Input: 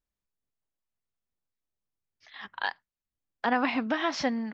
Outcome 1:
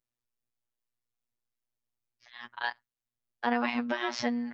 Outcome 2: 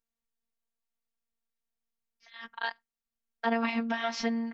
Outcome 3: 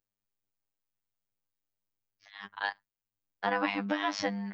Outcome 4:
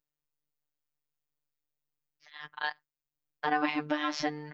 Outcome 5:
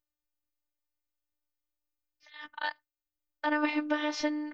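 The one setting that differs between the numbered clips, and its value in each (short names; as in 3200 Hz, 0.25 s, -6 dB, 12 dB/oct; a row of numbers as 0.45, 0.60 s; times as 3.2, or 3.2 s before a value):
robotiser, frequency: 120, 230, 100, 150, 300 Hz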